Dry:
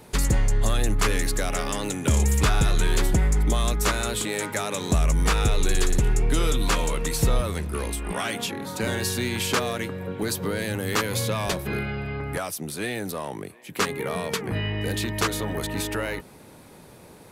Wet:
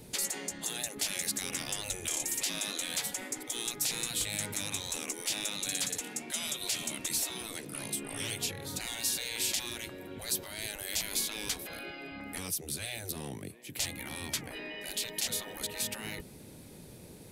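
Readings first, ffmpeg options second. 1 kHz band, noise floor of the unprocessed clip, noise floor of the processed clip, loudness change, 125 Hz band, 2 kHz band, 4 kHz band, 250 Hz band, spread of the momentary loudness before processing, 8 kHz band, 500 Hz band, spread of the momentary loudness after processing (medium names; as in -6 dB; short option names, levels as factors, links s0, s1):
-16.0 dB, -48 dBFS, -50 dBFS, -8.5 dB, -21.5 dB, -9.5 dB, -3.5 dB, -14.5 dB, 8 LU, -1.5 dB, -16.0 dB, 10 LU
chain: -af "afftfilt=real='re*lt(hypot(re,im),0.1)':imag='im*lt(hypot(re,im),0.1)':win_size=1024:overlap=0.75,equalizer=f=1100:w=0.74:g=-12.5"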